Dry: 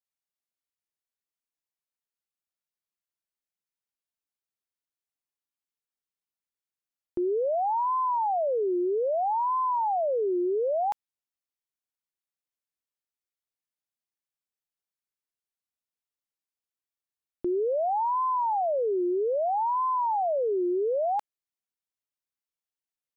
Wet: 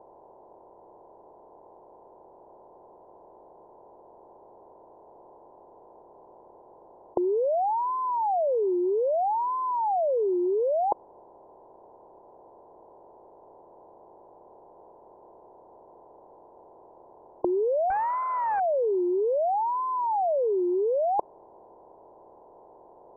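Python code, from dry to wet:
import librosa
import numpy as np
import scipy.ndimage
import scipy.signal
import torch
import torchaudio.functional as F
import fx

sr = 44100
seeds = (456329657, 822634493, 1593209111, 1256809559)

y = fx.bin_compress(x, sr, power=0.4)
y = scipy.signal.sosfilt(scipy.signal.butter(4, 1000.0, 'lowpass', fs=sr, output='sos'), y)
y = fx.doppler_dist(y, sr, depth_ms=0.37, at=(17.9, 18.6))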